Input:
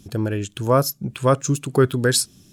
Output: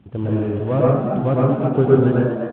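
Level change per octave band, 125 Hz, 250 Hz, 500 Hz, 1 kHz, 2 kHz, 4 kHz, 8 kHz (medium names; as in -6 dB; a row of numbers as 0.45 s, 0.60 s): +3.5 dB, +5.5 dB, +3.5 dB, -0.5 dB, -6.0 dB, under -15 dB, under -40 dB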